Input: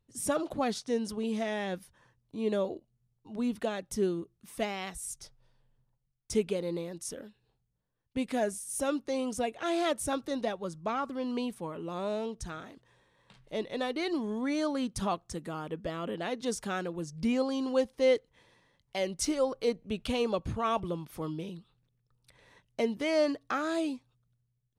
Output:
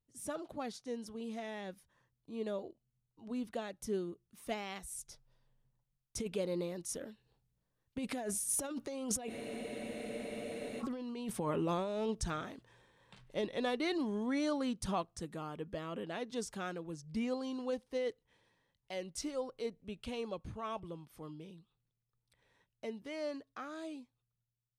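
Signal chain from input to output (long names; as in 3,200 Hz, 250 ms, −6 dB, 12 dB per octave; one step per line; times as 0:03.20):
source passing by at 0:10.20, 8 m/s, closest 2.7 metres
compressor whose output falls as the input rises −51 dBFS, ratio −1
frozen spectrum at 0:09.32, 1.49 s
level +12.5 dB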